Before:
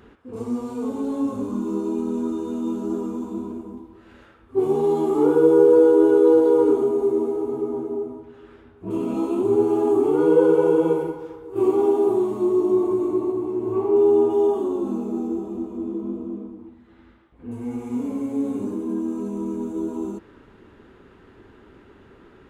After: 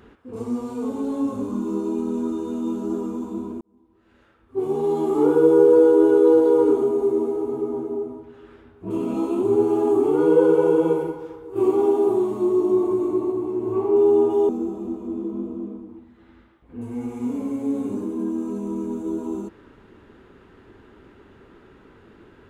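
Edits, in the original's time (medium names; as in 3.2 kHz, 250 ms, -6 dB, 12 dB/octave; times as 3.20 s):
3.61–5.20 s: fade in
14.49–15.19 s: delete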